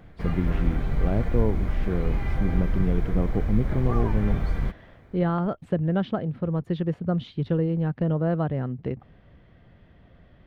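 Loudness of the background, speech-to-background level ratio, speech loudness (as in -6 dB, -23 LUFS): -29.5 LUFS, 2.0 dB, -27.5 LUFS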